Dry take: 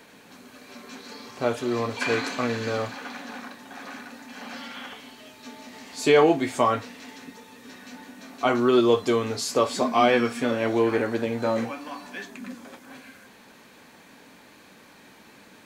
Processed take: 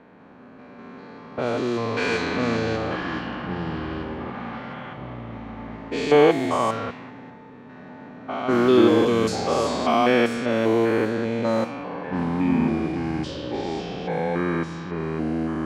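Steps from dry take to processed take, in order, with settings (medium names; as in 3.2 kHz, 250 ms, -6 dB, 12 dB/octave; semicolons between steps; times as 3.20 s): spectrogram pixelated in time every 200 ms; level-controlled noise filter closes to 1.2 kHz, open at -20.5 dBFS; ever faster or slower copies 123 ms, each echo -6 st, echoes 2, each echo -6 dB; trim +4 dB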